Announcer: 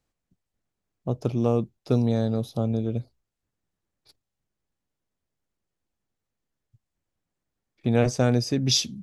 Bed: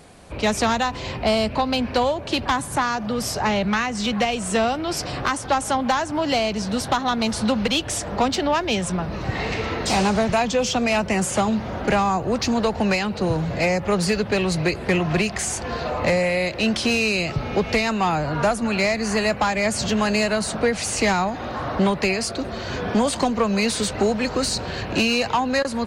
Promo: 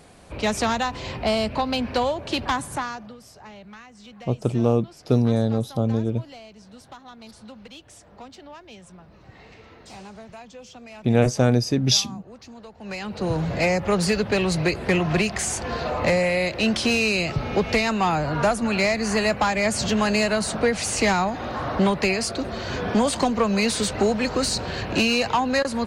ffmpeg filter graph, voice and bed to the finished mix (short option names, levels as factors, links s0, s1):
-filter_complex "[0:a]adelay=3200,volume=1.41[s0];[1:a]volume=8.91,afade=t=out:st=2.55:d=0.63:silence=0.105925,afade=t=in:st=12.8:d=0.64:silence=0.0841395[s1];[s0][s1]amix=inputs=2:normalize=0"